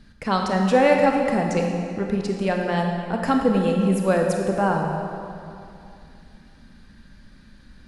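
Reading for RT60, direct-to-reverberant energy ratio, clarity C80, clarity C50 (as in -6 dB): 2.6 s, 1.5 dB, 4.0 dB, 2.5 dB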